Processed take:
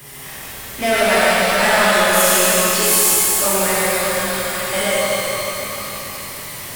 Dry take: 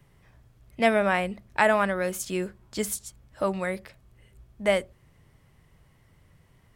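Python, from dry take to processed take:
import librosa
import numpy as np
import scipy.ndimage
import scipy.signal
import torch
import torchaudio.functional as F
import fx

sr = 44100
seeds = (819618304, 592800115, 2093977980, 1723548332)

y = fx.riaa(x, sr, side='recording')
y = fx.power_curve(y, sr, exponent=0.5)
y = fx.echo_feedback(y, sr, ms=150, feedback_pct=54, wet_db=-5)
y = fx.spec_freeze(y, sr, seeds[0], at_s=3.94, hold_s=0.78)
y = fx.rev_shimmer(y, sr, seeds[1], rt60_s=3.5, semitones=12, shimmer_db=-8, drr_db=-9.5)
y = F.gain(torch.from_numpy(y), -9.0).numpy()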